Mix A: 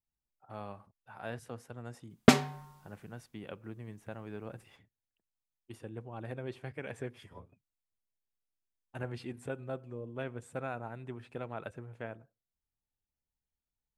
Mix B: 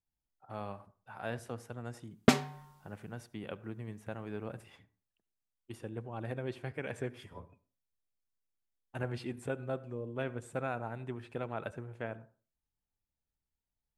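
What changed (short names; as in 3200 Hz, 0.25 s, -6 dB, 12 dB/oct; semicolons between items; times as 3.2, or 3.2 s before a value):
background -3.5 dB; reverb: on, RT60 0.40 s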